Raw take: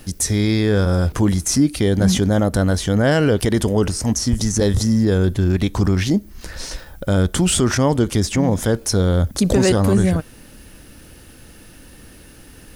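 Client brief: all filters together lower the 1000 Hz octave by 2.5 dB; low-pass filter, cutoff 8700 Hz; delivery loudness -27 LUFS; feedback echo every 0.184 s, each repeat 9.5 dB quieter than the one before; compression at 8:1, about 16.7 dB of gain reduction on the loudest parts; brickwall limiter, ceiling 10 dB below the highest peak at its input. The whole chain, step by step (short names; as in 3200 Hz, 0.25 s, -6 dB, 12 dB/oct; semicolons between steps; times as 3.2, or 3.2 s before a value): LPF 8700 Hz; bell 1000 Hz -3.5 dB; compressor 8:1, threshold -29 dBFS; limiter -24.5 dBFS; feedback echo 0.184 s, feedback 33%, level -9.5 dB; gain +8 dB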